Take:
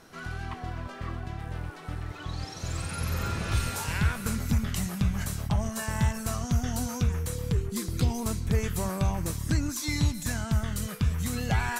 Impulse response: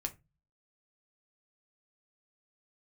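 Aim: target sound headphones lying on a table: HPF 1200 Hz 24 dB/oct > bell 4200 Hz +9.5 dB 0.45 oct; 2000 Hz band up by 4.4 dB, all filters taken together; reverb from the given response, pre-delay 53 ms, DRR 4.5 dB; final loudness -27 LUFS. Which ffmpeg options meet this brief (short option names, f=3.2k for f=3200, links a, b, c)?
-filter_complex "[0:a]equalizer=f=2k:t=o:g=5.5,asplit=2[a][b];[1:a]atrim=start_sample=2205,adelay=53[c];[b][c]afir=irnorm=-1:irlink=0,volume=-4.5dB[d];[a][d]amix=inputs=2:normalize=0,highpass=f=1.2k:w=0.5412,highpass=f=1.2k:w=1.3066,equalizer=f=4.2k:t=o:w=0.45:g=9.5,volume=5.5dB"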